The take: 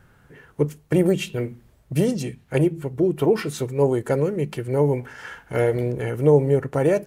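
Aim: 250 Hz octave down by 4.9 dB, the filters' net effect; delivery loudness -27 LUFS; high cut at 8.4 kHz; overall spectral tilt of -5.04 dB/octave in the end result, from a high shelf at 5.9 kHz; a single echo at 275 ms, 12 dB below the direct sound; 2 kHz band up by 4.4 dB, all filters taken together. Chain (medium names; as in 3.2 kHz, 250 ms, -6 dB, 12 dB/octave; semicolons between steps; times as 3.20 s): low-pass 8.4 kHz; peaking EQ 250 Hz -8.5 dB; peaking EQ 2 kHz +6 dB; treble shelf 5.9 kHz -3.5 dB; delay 275 ms -12 dB; trim -2 dB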